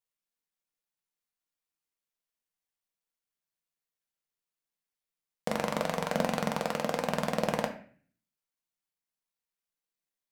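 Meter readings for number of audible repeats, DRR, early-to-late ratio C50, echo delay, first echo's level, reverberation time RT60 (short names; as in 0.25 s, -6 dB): none, 3.0 dB, 10.5 dB, none, none, 0.45 s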